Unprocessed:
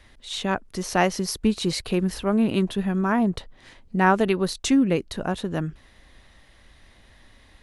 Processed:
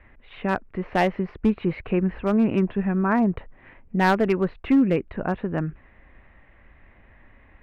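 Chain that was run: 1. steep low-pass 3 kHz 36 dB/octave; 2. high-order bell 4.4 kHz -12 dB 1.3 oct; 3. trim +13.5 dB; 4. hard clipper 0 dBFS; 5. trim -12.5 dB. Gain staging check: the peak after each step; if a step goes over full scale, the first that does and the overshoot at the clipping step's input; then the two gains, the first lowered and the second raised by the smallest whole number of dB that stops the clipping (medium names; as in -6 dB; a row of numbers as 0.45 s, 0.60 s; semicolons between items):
-5.5 dBFS, -5.5 dBFS, +8.0 dBFS, 0.0 dBFS, -12.5 dBFS; step 3, 8.0 dB; step 3 +5.5 dB, step 5 -4.5 dB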